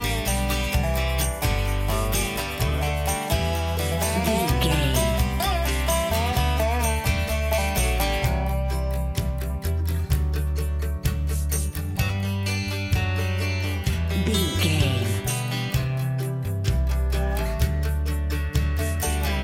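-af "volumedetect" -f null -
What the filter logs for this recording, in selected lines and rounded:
mean_volume: -23.2 dB
max_volume: -8.3 dB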